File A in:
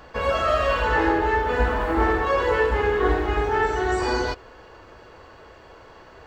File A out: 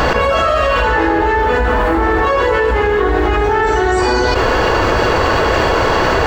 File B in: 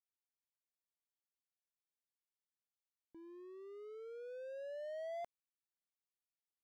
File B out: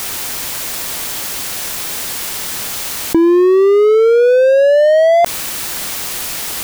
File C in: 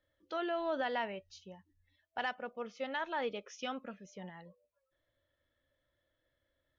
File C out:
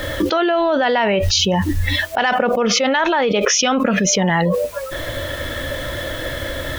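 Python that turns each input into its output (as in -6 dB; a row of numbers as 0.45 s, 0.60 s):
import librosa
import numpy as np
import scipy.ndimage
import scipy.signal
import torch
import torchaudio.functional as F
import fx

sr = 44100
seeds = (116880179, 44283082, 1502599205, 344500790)

y = fx.env_flatten(x, sr, amount_pct=100)
y = y * 10.0 ** (-1.5 / 20.0) / np.max(np.abs(y))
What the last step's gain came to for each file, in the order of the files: +3.0 dB, +33.5 dB, +16.0 dB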